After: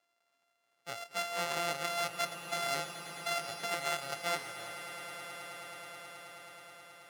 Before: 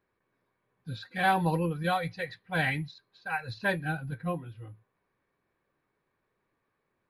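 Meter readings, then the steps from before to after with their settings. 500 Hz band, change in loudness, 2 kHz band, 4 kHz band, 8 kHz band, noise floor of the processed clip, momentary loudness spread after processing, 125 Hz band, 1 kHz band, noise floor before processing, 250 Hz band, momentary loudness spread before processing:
−3.5 dB, −6.0 dB, −5.5 dB, +4.0 dB, +13.0 dB, −78 dBFS, 15 LU, −19.0 dB, −5.5 dB, −80 dBFS, −16.5 dB, 17 LU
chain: samples sorted by size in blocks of 64 samples
low-shelf EQ 360 Hz −8 dB
compressor whose output falls as the input rises −33 dBFS, ratio −1
meter weighting curve A
echo that builds up and dies away 107 ms, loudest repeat 8, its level −16 dB

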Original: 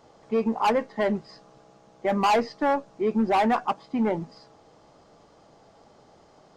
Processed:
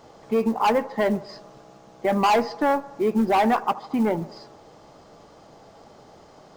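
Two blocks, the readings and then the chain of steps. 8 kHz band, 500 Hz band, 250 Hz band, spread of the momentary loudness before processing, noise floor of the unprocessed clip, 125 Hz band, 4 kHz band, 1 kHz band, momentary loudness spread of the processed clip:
+3.5 dB, +2.5 dB, +2.5 dB, 8 LU, −56 dBFS, +2.5 dB, +2.0 dB, +2.5 dB, 9 LU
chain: in parallel at 0 dB: downward compressor 6 to 1, threshold −32 dBFS, peak gain reduction 13 dB
on the sum: floating-point word with a short mantissa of 4 bits
delay with a band-pass on its return 76 ms, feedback 63%, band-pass 700 Hz, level −17 dB

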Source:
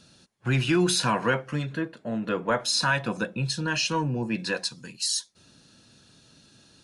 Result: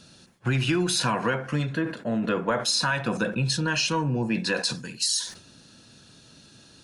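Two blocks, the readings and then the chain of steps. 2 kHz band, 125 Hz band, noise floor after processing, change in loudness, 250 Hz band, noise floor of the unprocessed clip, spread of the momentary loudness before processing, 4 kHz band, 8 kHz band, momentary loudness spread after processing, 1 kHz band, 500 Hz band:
0.0 dB, +1.5 dB, −53 dBFS, +1.0 dB, +1.0 dB, −59 dBFS, 9 LU, +1.5 dB, +1.5 dB, 5 LU, 0.0 dB, +0.5 dB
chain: downward compressor, threshold −25 dBFS, peak gain reduction 7 dB
on a send: bucket-brigade delay 68 ms, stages 1,024, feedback 36%, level −17 dB
on the sum: level that may fall only so fast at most 110 dB per second
level +4 dB

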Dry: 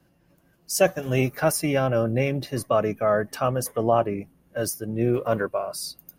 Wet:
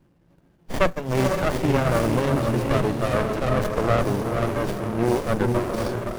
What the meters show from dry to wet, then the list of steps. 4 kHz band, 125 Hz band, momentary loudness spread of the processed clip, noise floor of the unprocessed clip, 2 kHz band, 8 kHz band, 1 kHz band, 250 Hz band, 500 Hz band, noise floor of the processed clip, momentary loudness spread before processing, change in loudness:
+0.5 dB, +4.0 dB, 4 LU, −63 dBFS, +2.0 dB, −7.5 dB, +1.5 dB, +3.5 dB, 0.0 dB, −61 dBFS, 7 LU, +1.5 dB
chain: feedback delay with all-pass diffusion 490 ms, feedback 44%, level −3.5 dB
windowed peak hold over 33 samples
level +3 dB

